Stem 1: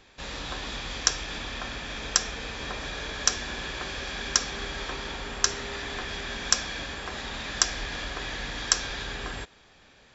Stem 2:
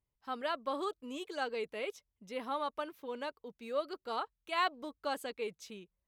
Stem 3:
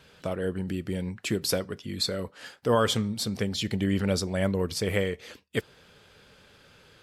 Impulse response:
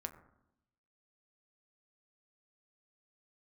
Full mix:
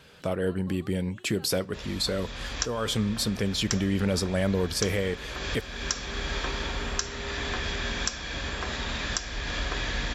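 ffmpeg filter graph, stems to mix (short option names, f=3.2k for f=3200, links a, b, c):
-filter_complex "[0:a]equalizer=f=70:w=0.57:g=5,bandreject=f=790:w=14,adelay=1550,volume=1dB,asplit=2[a][b];[b]volume=-10.5dB[c];[1:a]acompressor=threshold=-50dB:ratio=1.5,volume=-10dB[d];[2:a]alimiter=limit=-19.5dB:level=0:latency=1:release=27,volume=2.5dB,asplit=2[e][f];[f]apad=whole_len=515832[g];[a][g]sidechaincompress=threshold=-48dB:ratio=4:attack=37:release=220[h];[3:a]atrim=start_sample=2205[i];[c][i]afir=irnorm=-1:irlink=0[j];[h][d][e][j]amix=inputs=4:normalize=0,alimiter=limit=-10.5dB:level=0:latency=1:release=413"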